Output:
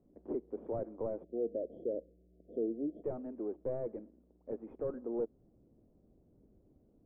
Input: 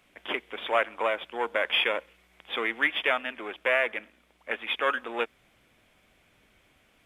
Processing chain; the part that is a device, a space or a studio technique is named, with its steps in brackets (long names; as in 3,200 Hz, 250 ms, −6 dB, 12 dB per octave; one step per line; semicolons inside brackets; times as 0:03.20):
time-frequency box erased 0:01.24–0:03.03, 720–3,100 Hz
overdriven synthesiser ladder filter (soft clipping −24.5 dBFS, distortion −9 dB; transistor ladder low-pass 490 Hz, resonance 25%)
level +7.5 dB